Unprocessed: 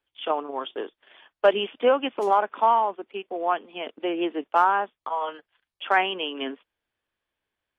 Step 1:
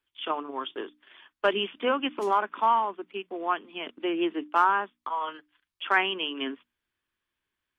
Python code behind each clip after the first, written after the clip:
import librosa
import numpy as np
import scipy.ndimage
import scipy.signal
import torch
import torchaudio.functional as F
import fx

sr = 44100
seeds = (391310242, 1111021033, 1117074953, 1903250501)

y = fx.band_shelf(x, sr, hz=610.0, db=-8.0, octaves=1.1)
y = fx.hum_notches(y, sr, base_hz=60, count=5)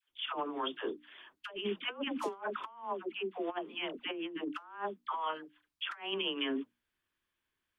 y = fx.dispersion(x, sr, late='lows', ms=97.0, hz=660.0)
y = fx.over_compress(y, sr, threshold_db=-31.0, ratio=-0.5)
y = F.gain(torch.from_numpy(y), -5.5).numpy()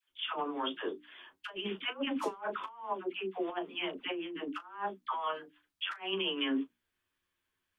y = fx.room_early_taps(x, sr, ms=(11, 37), db=(-5.0, -14.5))